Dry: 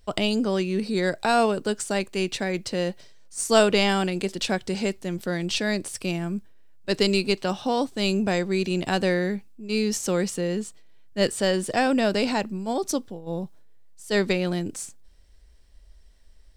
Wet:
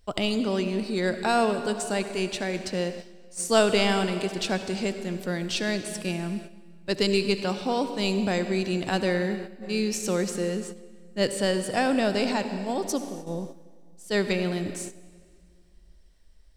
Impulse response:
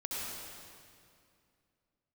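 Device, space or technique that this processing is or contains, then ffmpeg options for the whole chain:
keyed gated reverb: -filter_complex "[0:a]asplit=3[a][b][c];[1:a]atrim=start_sample=2205[d];[b][d]afir=irnorm=-1:irlink=0[e];[c]apad=whole_len=730554[f];[e][f]sidechaingate=range=-10dB:threshold=-38dB:ratio=16:detection=peak,volume=-9.5dB[g];[a][g]amix=inputs=2:normalize=0,volume=-4dB"

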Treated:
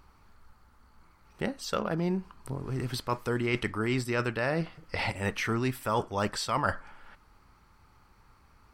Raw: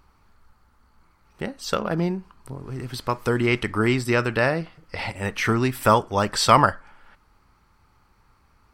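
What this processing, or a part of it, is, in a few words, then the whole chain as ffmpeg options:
compression on the reversed sound: -af "areverse,acompressor=threshold=-25dB:ratio=10,areverse"

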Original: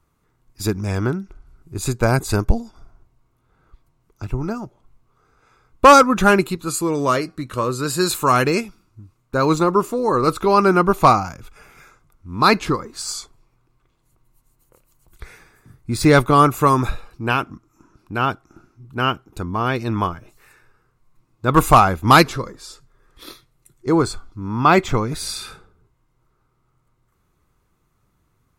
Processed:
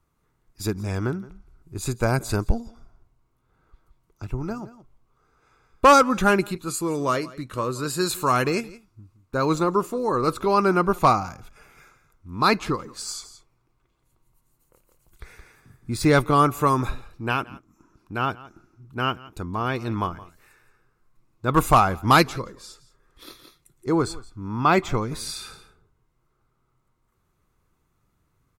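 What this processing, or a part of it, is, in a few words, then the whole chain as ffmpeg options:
ducked delay: -filter_complex "[0:a]asplit=3[a][b][c];[b]adelay=170,volume=-5dB[d];[c]apad=whole_len=1267978[e];[d][e]sidechaincompress=threshold=-31dB:ratio=6:attack=5.8:release=812[f];[a][f]amix=inputs=2:normalize=0,volume=-5dB"

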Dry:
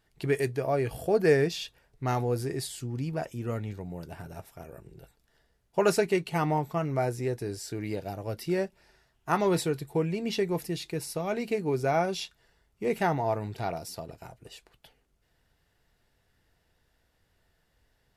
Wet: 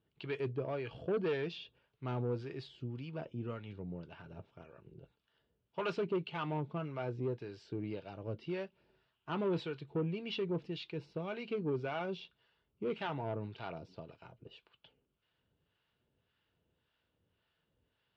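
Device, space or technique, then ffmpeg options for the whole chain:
guitar amplifier with harmonic tremolo: -filter_complex "[0:a]acrossover=split=710[a][b];[a]aeval=exprs='val(0)*(1-0.7/2+0.7/2*cos(2*PI*1.8*n/s))':c=same[c];[b]aeval=exprs='val(0)*(1-0.7/2-0.7/2*cos(2*PI*1.8*n/s))':c=same[d];[c][d]amix=inputs=2:normalize=0,asoftclip=type=tanh:threshold=-25.5dB,highpass=94,equalizer=f=740:t=q:w=4:g=-8,equalizer=f=1.9k:t=q:w=4:g=-9,equalizer=f=3k:t=q:w=4:g=5,lowpass=f=3.6k:w=0.5412,lowpass=f=3.6k:w=1.3066,volume=-2.5dB"

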